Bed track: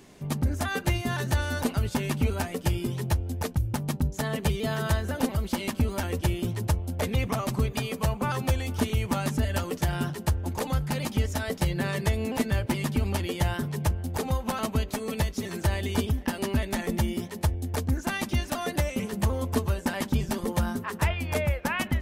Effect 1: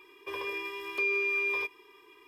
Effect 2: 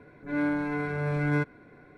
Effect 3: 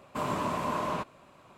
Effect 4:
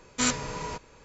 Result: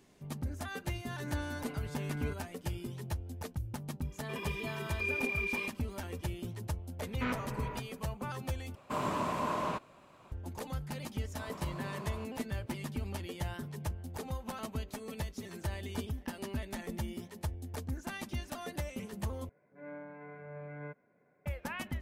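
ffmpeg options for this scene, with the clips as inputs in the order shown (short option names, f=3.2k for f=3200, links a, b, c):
-filter_complex "[2:a]asplit=2[a][b];[3:a]asplit=2[c][d];[0:a]volume=-11.5dB[e];[1:a]aphaser=in_gain=1:out_gain=1:delay=4.7:decay=0.49:speed=1.6:type=triangular[f];[4:a]lowpass=f=2.5k:w=0.5412,lowpass=f=2.5k:w=1.3066[g];[b]highpass=150,equalizer=f=180:t=q:w=4:g=4,equalizer=f=310:t=q:w=4:g=-8,equalizer=f=590:t=q:w=4:g=7,equalizer=f=1.4k:t=q:w=4:g=-4,lowpass=f=2.4k:w=0.5412,lowpass=f=2.4k:w=1.3066[h];[e]asplit=3[i][j][k];[i]atrim=end=8.754[l];[c]atrim=end=1.57,asetpts=PTS-STARTPTS,volume=-2.5dB[m];[j]atrim=start=10.316:end=19.494[n];[h]atrim=end=1.97,asetpts=PTS-STARTPTS,volume=-16.5dB[o];[k]atrim=start=21.456[p];[a]atrim=end=1.97,asetpts=PTS-STARTPTS,volume=-15.5dB,afade=t=in:d=0.004:c=hsin,afade=t=out:st=1.966:d=0.004:c=hsin,adelay=900[q];[f]atrim=end=2.27,asetpts=PTS-STARTPTS,volume=-7dB,afade=t=in:d=0.004:c=hsin,afade=t=out:st=2.266:d=0.004:c=hsin,adelay=4020[r];[g]atrim=end=1.04,asetpts=PTS-STARTPTS,volume=-6.5dB,afade=t=in:d=0.004:c=hsin,afade=t=out:st=1.036:d=0.004:c=hsin,adelay=7020[s];[d]atrim=end=1.57,asetpts=PTS-STARTPTS,volume=-15.5dB,afade=t=in:d=0.004:c=hsin,afade=t=out:st=1.566:d=0.004:c=hsin,adelay=494802S[t];[l][m]acrossfade=d=0.004:c1=hsin:c2=hsin[u];[u][n]acrossfade=d=0.004:c1=hsin:c2=hsin[v];[v][o]acrossfade=d=0.004:c1=hsin:c2=hsin[w];[w][p]acrossfade=d=0.004:c1=hsin:c2=hsin[x];[x][q][r][s][t]amix=inputs=5:normalize=0"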